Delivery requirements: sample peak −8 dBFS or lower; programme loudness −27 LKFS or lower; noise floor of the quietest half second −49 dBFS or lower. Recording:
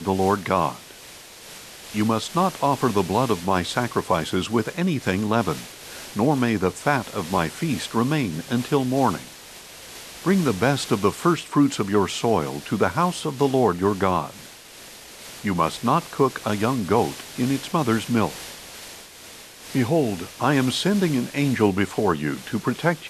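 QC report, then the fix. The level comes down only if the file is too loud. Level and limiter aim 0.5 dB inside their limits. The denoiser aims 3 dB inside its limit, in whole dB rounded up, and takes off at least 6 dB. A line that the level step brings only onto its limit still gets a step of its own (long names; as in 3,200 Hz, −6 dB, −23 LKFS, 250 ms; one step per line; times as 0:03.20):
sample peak −5.5 dBFS: out of spec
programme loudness −23.0 LKFS: out of spec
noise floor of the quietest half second −43 dBFS: out of spec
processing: broadband denoise 6 dB, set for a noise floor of −43 dBFS
level −4.5 dB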